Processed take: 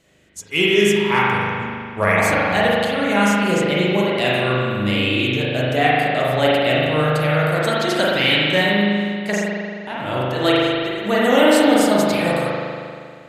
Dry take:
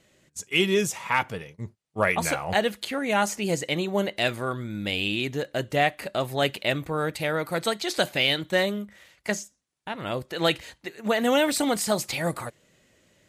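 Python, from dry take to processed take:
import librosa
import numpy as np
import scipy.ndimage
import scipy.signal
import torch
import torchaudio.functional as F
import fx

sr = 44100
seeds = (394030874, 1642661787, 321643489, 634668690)

y = fx.rev_spring(x, sr, rt60_s=2.2, pass_ms=(39,), chirp_ms=55, drr_db=-6.5)
y = y * 10.0 ** (1.5 / 20.0)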